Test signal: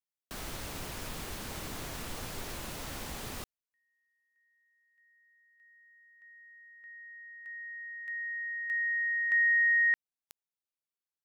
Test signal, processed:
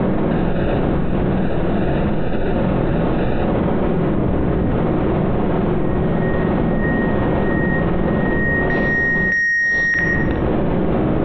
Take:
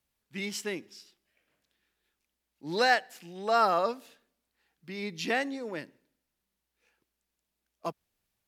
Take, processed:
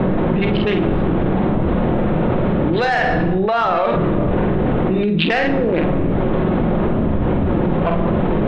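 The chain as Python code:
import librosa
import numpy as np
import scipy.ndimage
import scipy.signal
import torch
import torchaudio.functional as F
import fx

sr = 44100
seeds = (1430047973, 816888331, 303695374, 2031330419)

p1 = fx.wiener(x, sr, points=41)
p2 = fx.dmg_wind(p1, sr, seeds[0], corner_hz=270.0, level_db=-37.0)
p3 = scipy.signal.sosfilt(scipy.signal.butter(12, 3800.0, 'lowpass', fs=sr, output='sos'), p2)
p4 = fx.low_shelf(p3, sr, hz=260.0, db=-7.5)
p5 = fx.hum_notches(p4, sr, base_hz=50, count=8)
p6 = fx.rider(p5, sr, range_db=4, speed_s=0.5)
p7 = p5 + (p6 * librosa.db_to_amplitude(3.0))
p8 = 10.0 ** (-13.0 / 20.0) * np.tanh(p7 / 10.0 ** (-13.0 / 20.0))
p9 = fx.room_early_taps(p8, sr, ms=(48, 67), db=(-6.0, -18.0))
p10 = fx.room_shoebox(p9, sr, seeds[1], volume_m3=2600.0, walls='furnished', distance_m=0.95)
y = fx.env_flatten(p10, sr, amount_pct=100)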